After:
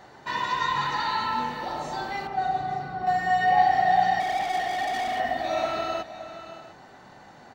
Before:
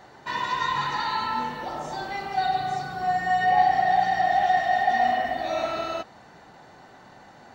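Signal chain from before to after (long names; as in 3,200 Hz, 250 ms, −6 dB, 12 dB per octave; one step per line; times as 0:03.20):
0:02.27–0:03.07: low-pass filter 1,100 Hz 6 dB per octave
0:04.20–0:05.20: gain into a clipping stage and back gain 26.5 dB
on a send: multi-tap delay 570/700 ms −15.5/−17.5 dB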